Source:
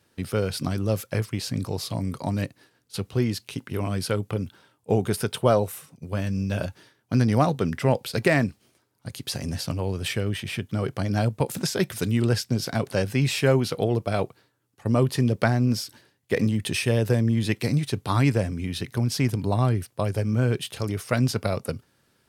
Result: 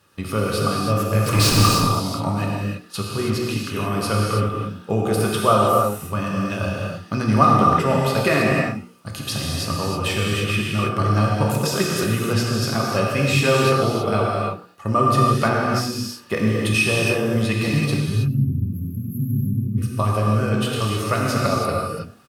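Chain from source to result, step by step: notches 60/120/180/240/300/360/420/480 Hz; 17.94–19.78 spectral delete 260–11000 Hz; notch 2400 Hz, Q 8.5; 1.26–1.68 sample leveller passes 5; in parallel at 0 dB: compressor 5:1, threshold -32 dBFS, peak gain reduction 15.5 dB; on the sum: bit-crush 12-bit; small resonant body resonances 1200/2500 Hz, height 18 dB, ringing for 45 ms; on a send: frequency-shifting echo 0.101 s, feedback 30%, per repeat +120 Hz, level -22 dB; on the sum: non-linear reverb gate 0.35 s flat, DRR -3 dB; gain -2.5 dB

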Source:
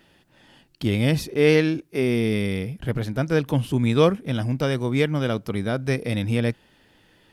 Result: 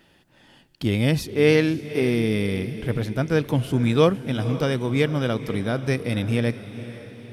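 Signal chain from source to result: diffused feedback echo 0.509 s, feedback 48%, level -13.5 dB

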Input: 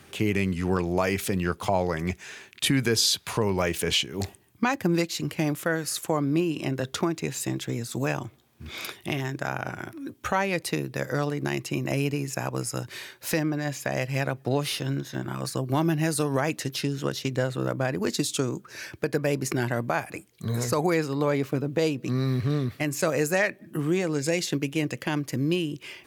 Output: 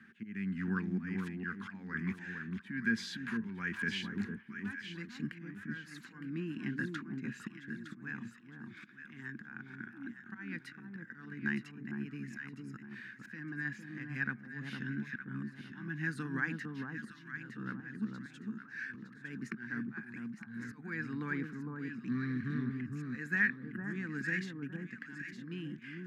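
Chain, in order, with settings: auto swell 0.372 s; double band-pass 600 Hz, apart 2.9 oct; echo with dull and thin repeats by turns 0.456 s, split 1200 Hz, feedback 54%, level -3 dB; gain +3.5 dB

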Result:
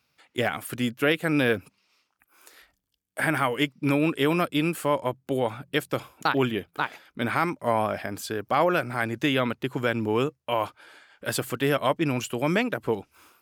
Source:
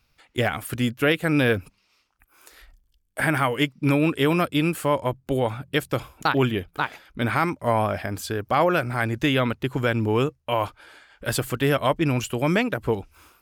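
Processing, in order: HPF 150 Hz 12 dB/oct; gain -2 dB

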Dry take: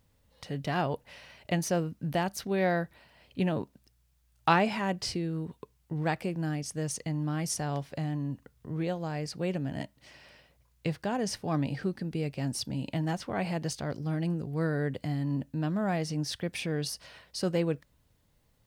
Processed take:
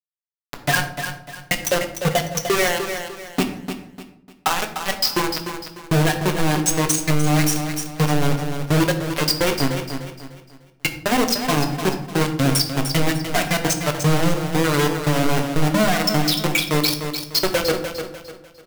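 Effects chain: per-bin expansion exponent 3; recorder AGC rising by 24 dB/s; HPF 770 Hz 6 dB/oct; high shelf 6600 Hz -9.5 dB; compressor 10:1, threshold -37 dBFS, peak gain reduction 14.5 dB; soft clip -31.5 dBFS, distortion -22 dB; companded quantiser 2-bit; feedback echo 0.299 s, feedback 34%, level -8.5 dB; on a send at -5 dB: reverb RT60 0.55 s, pre-delay 7 ms; on the sum: maximiser +19 dB; gain -7 dB

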